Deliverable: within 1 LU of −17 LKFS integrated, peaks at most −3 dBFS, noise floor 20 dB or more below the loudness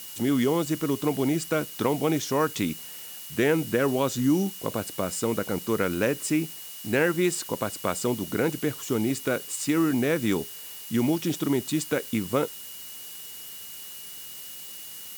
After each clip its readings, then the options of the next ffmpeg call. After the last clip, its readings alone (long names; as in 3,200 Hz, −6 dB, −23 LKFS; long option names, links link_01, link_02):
interfering tone 2,900 Hz; level of the tone −48 dBFS; background noise floor −41 dBFS; target noise floor −47 dBFS; integrated loudness −26.5 LKFS; sample peak −11.0 dBFS; target loudness −17.0 LKFS
→ -af "bandreject=frequency=2900:width=30"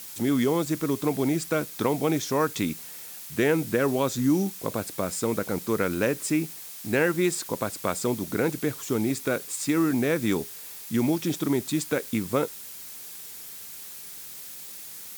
interfering tone none found; background noise floor −41 dBFS; target noise floor −47 dBFS
→ -af "afftdn=noise_reduction=6:noise_floor=-41"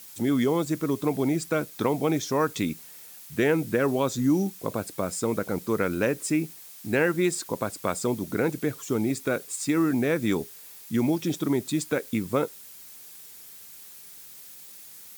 background noise floor −46 dBFS; target noise floor −47 dBFS
→ -af "afftdn=noise_reduction=6:noise_floor=-46"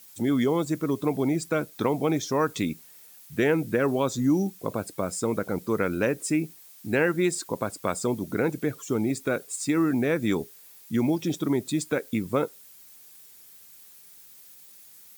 background noise floor −51 dBFS; integrated loudness −27.0 LKFS; sample peak −11.5 dBFS; target loudness −17.0 LKFS
→ -af "volume=10dB,alimiter=limit=-3dB:level=0:latency=1"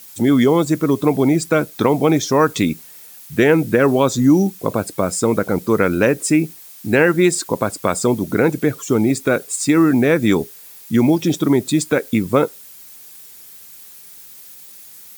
integrated loudness −17.0 LKFS; sample peak −3.0 dBFS; background noise floor −41 dBFS